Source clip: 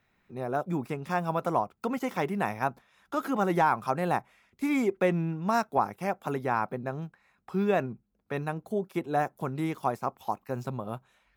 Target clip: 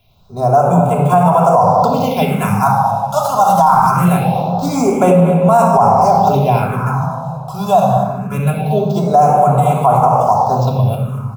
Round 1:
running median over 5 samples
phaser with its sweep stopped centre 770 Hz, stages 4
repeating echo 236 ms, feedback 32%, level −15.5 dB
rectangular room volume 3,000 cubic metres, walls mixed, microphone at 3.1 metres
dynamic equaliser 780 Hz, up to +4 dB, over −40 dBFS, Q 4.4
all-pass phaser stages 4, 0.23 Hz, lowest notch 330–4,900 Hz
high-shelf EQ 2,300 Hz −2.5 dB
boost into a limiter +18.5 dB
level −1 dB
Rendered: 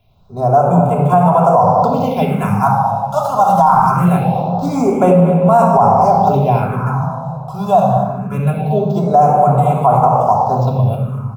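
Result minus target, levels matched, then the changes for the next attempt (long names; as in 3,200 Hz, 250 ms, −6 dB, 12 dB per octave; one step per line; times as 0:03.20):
4,000 Hz band −6.5 dB
change: high-shelf EQ 2,300 Hz +7 dB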